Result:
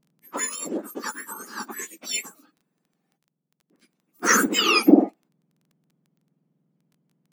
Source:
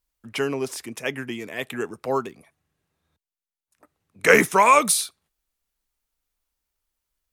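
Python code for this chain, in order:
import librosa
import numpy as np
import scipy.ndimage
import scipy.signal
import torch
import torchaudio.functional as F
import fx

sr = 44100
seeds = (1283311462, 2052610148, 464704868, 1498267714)

y = fx.octave_mirror(x, sr, pivot_hz=1700.0)
y = fx.dmg_crackle(y, sr, seeds[0], per_s=11.0, level_db=-47.0)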